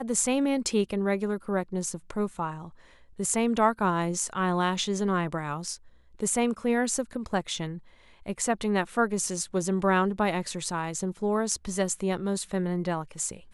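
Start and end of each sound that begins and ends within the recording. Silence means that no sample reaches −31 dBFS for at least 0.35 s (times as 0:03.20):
0:03.20–0:05.75
0:06.20–0:07.75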